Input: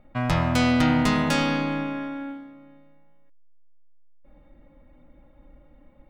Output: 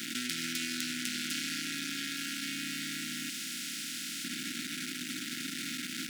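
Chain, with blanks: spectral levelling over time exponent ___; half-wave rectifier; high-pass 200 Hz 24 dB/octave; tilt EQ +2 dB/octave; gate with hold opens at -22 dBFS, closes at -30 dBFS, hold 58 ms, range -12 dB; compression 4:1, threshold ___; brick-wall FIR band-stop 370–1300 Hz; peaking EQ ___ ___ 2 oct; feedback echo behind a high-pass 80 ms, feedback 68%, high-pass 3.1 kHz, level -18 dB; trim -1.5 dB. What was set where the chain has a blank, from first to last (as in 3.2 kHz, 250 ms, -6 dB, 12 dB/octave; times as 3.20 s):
0.2, -27 dBFS, 840 Hz, -12 dB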